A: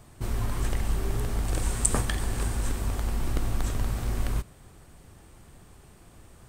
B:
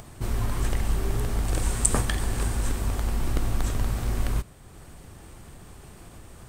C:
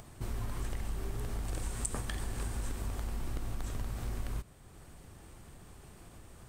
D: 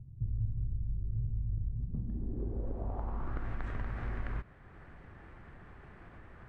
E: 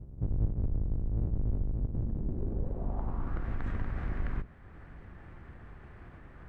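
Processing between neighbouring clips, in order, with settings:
upward compression, threshold −40 dBFS; level +2 dB
downward compressor 3 to 1, threshold −26 dBFS, peak gain reduction 9 dB; level −7 dB
low-pass filter sweep 120 Hz → 1,800 Hz, 0:01.70–0:03.49
sub-octave generator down 1 octave, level +3 dB

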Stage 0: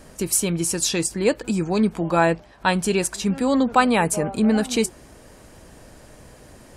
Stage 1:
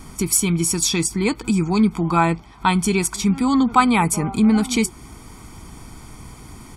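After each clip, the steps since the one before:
comb filter 0.9 ms, depth 89%
in parallel at −2 dB: downward compressor, threshold −27 dBFS, peak gain reduction 17.5 dB
on the sum: level −1.5 dB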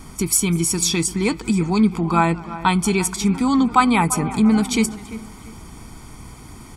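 delay with a low-pass on its return 343 ms, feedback 35%, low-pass 2,500 Hz, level −15 dB
feedback echo with a swinging delay time 201 ms, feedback 41%, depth 137 cents, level −23.5 dB

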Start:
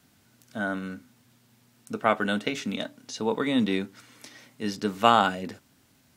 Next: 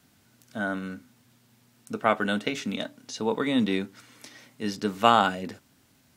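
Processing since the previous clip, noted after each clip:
no processing that can be heard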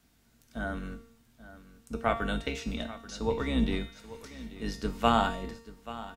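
sub-octave generator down 2 octaves, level +1 dB
tuned comb filter 230 Hz, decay 0.69 s, harmonics all, mix 80%
repeating echo 834 ms, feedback 28%, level −16 dB
level +6.5 dB

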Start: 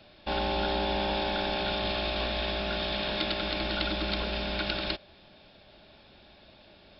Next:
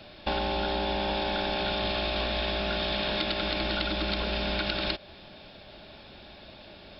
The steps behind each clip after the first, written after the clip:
downward compressor, threshold −33 dBFS, peak gain reduction 8 dB
level +7 dB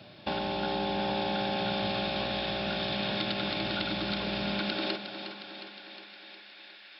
high-pass filter sweep 130 Hz → 1,800 Hz, 0:04.48–0:05.60
feedback echo with a high-pass in the loop 360 ms, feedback 65%, high-pass 160 Hz, level −9 dB
level −3.5 dB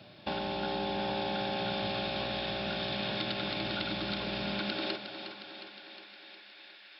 four-comb reverb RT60 2 s, combs from 25 ms, DRR 18 dB
level −2.5 dB

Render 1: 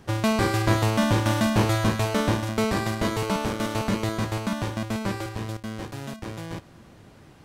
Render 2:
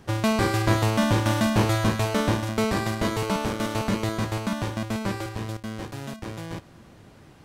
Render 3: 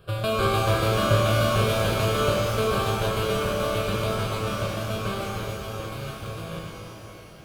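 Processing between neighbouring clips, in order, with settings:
no processing that can be heard
phaser with its sweep stopped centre 1,300 Hz, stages 8; reverb with rising layers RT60 2.9 s, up +12 semitones, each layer −8 dB, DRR −2 dB

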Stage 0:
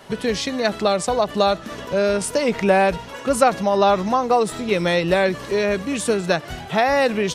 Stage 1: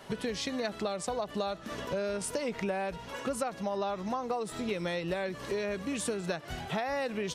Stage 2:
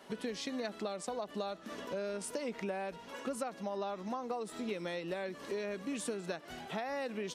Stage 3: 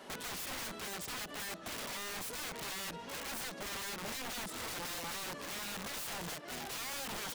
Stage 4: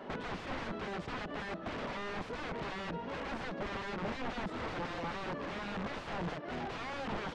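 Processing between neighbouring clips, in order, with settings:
downward compressor 6 to 1, threshold −25 dBFS, peak gain reduction 14.5 dB; level −5.5 dB
low shelf with overshoot 160 Hz −10.5 dB, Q 1.5; level −6 dB
wrap-around overflow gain 40.5 dB; level +4 dB
head-to-tape spacing loss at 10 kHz 39 dB; level +8.5 dB

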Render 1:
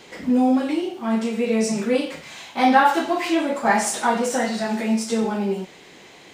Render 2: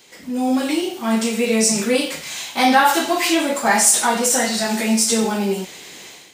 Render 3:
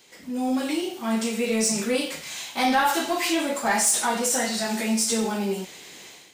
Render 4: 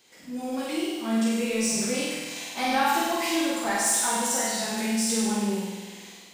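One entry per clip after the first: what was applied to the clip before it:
first-order pre-emphasis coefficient 0.8; automatic gain control gain up to 12.5 dB; in parallel at −2 dB: brickwall limiter −12 dBFS, peak gain reduction 9 dB; on the sum: level −1 dB
soft clipping −7 dBFS, distortion −21 dB; level −5.5 dB
flutter between parallel walls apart 8.4 metres, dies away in 1.4 s; level −6 dB

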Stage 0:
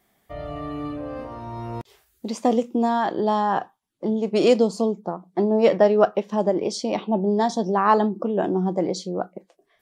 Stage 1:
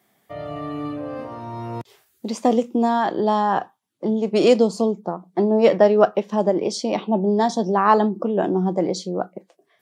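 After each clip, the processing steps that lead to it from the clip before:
high-pass filter 99 Hz 24 dB per octave
level +2 dB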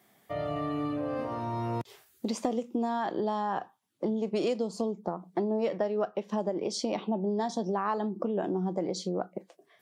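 downward compressor 5 to 1, threshold −28 dBFS, peak gain reduction 17 dB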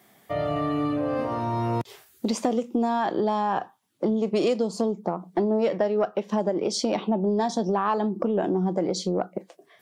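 soft clipping −17.5 dBFS, distortion −27 dB
level +6.5 dB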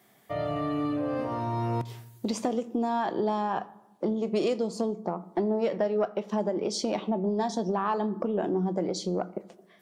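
convolution reverb RT60 1.0 s, pre-delay 4 ms, DRR 14.5 dB
level −4 dB

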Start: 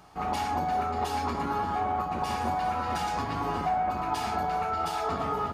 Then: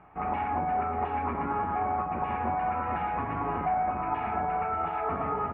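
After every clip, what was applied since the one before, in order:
elliptic low-pass filter 2,400 Hz, stop band 60 dB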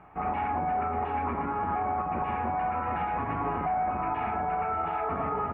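brickwall limiter −23.5 dBFS, peak gain reduction 5 dB
level +2 dB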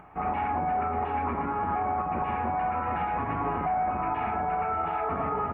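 upward compression, threshold −49 dBFS
level +1 dB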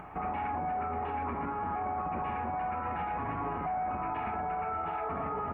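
brickwall limiter −31.5 dBFS, peak gain reduction 11 dB
level +4.5 dB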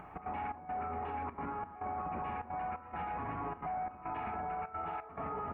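gate pattern "xx.xxx..xxxxx" 174 BPM −12 dB
level −4.5 dB

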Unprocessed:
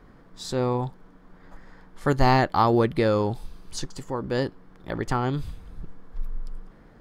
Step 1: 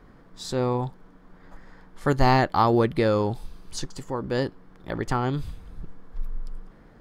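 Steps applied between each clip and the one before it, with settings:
no processing that can be heard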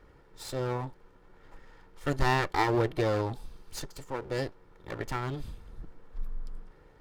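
lower of the sound and its delayed copy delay 2.2 ms
level −4 dB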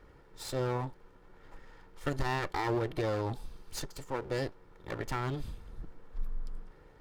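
brickwall limiter −22.5 dBFS, peak gain reduction 10 dB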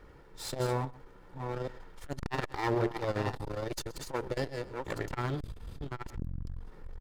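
delay that plays each chunk backwards 559 ms, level −5.5 dB
single-tap delay 123 ms −18.5 dB
saturating transformer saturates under 310 Hz
level +3 dB

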